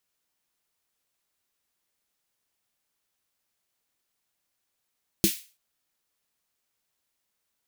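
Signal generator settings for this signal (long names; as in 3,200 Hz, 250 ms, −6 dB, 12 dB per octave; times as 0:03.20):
synth snare length 0.33 s, tones 200 Hz, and 330 Hz, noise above 2,200 Hz, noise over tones −4 dB, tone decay 0.10 s, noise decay 0.35 s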